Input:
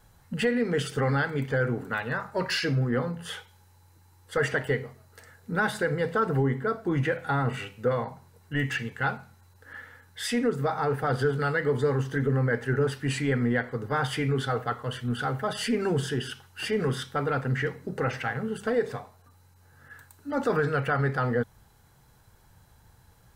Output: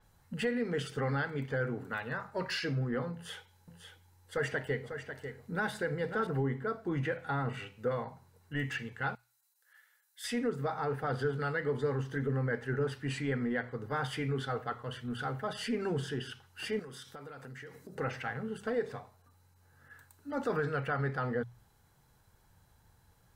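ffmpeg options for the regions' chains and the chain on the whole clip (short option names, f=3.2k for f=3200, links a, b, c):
-filter_complex "[0:a]asettb=1/sr,asplit=3[a][b][c];[a]atrim=end=3.134[d];[b]atrim=start=3.13:end=6.27,asetpts=PTS-STARTPTS,afade=t=in:d=0.004:c=qsin,afade=t=out:st=3.136:d=0.004:c=qsin,equalizer=f=1.2k:w=5.1:g=-4,aecho=1:1:546:0.376,atrim=end_sample=138474[e];[c]atrim=start=6.266[f];[d][e]acrossfade=d=0.004:c1=hsin:c2=qsin[g];[g][f]acrossfade=d=0.004:c1=qsin:c2=hsin,asettb=1/sr,asplit=3[h][i][j];[h]atrim=end=9.154[k];[i]atrim=start=9.15:end=10.24,asetpts=PTS-STARTPTS,afade=t=in:d=0.004:c=qsin,afade=t=out:st=1.086:d=0.004:c=qsin,highpass=f=490:w=0.5412,highpass=f=490:w=1.3066,aderivative[l];[j]atrim=start=10.236[m];[k][l]acrossfade=d=0.004:c1=hsin:c2=qsin[n];[n][m]acrossfade=d=0.004:c1=qsin:c2=hsin,asettb=1/sr,asplit=3[o][p][q];[o]atrim=end=16.794[r];[p]atrim=start=16.79:end=17.95,asetpts=PTS-STARTPTS,afade=t=in:d=0.004:c=qsin,afade=t=out:st=1.156:d=0.004:c=qsin,bass=f=250:g=-4,treble=f=4k:g=9,acompressor=threshold=-36dB:ratio=10:attack=3.2:release=140:knee=1:detection=peak[s];[q]atrim=start=17.946[t];[r][s]acrossfade=d=0.004:c1=hsin:c2=qsin[u];[u][t]acrossfade=d=0.004:c1=qsin:c2=hsin,bandreject=f=60:t=h:w=6,bandreject=f=120:t=h:w=6,adynamicequalizer=threshold=0.00282:dfrequency=6300:dqfactor=0.7:tfrequency=6300:tqfactor=0.7:attack=5:release=100:ratio=0.375:range=3:mode=cutabove:tftype=highshelf,volume=-7dB"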